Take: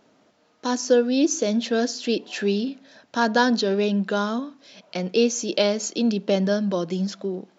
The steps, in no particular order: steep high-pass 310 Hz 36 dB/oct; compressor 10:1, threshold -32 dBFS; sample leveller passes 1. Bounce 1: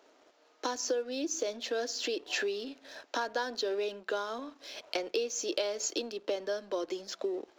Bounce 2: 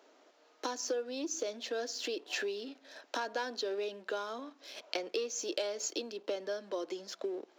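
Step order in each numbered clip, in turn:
compressor > steep high-pass > sample leveller; sample leveller > compressor > steep high-pass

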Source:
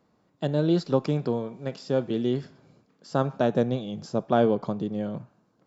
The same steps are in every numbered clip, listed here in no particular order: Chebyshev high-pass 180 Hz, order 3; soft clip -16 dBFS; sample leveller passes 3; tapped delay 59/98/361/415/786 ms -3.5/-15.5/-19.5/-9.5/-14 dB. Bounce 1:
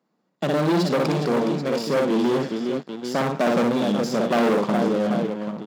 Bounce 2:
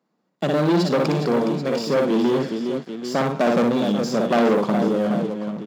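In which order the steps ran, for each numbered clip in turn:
tapped delay > sample leveller > soft clip > Chebyshev high-pass; soft clip > tapped delay > sample leveller > Chebyshev high-pass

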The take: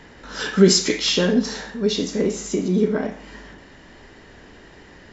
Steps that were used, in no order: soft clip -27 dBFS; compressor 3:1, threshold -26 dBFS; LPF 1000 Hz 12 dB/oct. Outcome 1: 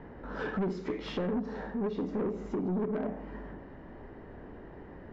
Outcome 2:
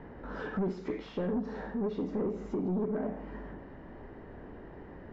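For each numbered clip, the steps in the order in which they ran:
LPF > compressor > soft clip; compressor > soft clip > LPF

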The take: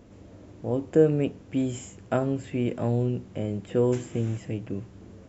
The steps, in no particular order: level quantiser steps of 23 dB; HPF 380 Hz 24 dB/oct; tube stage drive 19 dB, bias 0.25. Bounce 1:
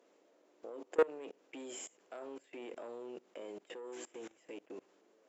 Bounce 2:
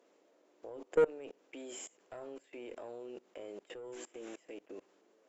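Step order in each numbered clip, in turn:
tube stage > HPF > level quantiser; HPF > tube stage > level quantiser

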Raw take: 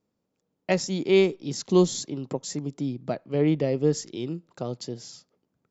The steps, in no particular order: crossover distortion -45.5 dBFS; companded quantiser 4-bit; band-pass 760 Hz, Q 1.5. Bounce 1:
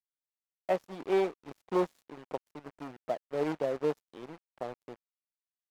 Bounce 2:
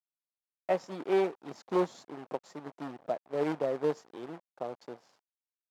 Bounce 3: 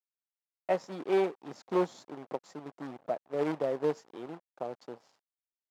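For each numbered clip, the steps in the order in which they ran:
companded quantiser > band-pass > crossover distortion; companded quantiser > crossover distortion > band-pass; crossover distortion > companded quantiser > band-pass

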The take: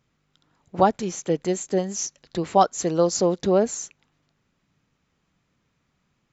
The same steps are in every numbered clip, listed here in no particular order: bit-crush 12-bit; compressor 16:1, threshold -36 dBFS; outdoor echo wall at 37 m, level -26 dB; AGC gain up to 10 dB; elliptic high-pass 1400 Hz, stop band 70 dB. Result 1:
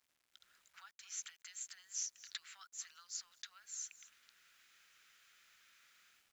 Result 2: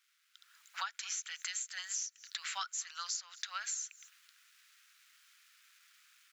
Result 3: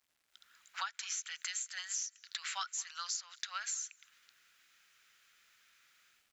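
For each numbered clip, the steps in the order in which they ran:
AGC > outdoor echo > compressor > elliptic high-pass > bit-crush; outdoor echo > bit-crush > elliptic high-pass > AGC > compressor; elliptic high-pass > AGC > bit-crush > compressor > outdoor echo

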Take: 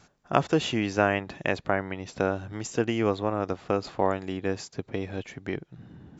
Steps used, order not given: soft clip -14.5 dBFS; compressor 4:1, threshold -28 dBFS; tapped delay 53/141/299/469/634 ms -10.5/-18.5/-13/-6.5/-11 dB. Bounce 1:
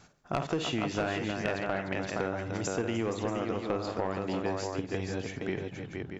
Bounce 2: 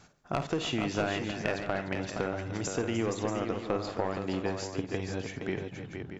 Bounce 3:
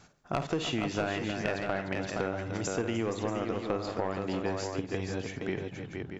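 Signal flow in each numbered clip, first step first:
tapped delay > soft clip > compressor; soft clip > compressor > tapped delay; soft clip > tapped delay > compressor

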